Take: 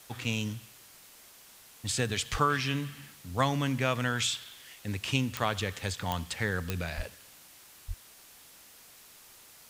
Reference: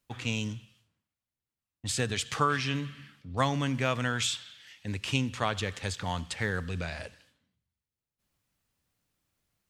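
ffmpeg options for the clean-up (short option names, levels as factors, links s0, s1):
-filter_complex "[0:a]adeclick=t=4,asplit=3[s0][s1][s2];[s0]afade=t=out:st=2.31:d=0.02[s3];[s1]highpass=f=140:w=0.5412,highpass=f=140:w=1.3066,afade=t=in:st=2.31:d=0.02,afade=t=out:st=2.43:d=0.02[s4];[s2]afade=t=in:st=2.43:d=0.02[s5];[s3][s4][s5]amix=inputs=3:normalize=0,asplit=3[s6][s7][s8];[s6]afade=t=out:st=6.96:d=0.02[s9];[s7]highpass=f=140:w=0.5412,highpass=f=140:w=1.3066,afade=t=in:st=6.96:d=0.02,afade=t=out:st=7.08:d=0.02[s10];[s8]afade=t=in:st=7.08:d=0.02[s11];[s9][s10][s11]amix=inputs=3:normalize=0,asplit=3[s12][s13][s14];[s12]afade=t=out:st=7.87:d=0.02[s15];[s13]highpass=f=140:w=0.5412,highpass=f=140:w=1.3066,afade=t=in:st=7.87:d=0.02,afade=t=out:st=7.99:d=0.02[s16];[s14]afade=t=in:st=7.99:d=0.02[s17];[s15][s16][s17]amix=inputs=3:normalize=0,afwtdn=0.0022"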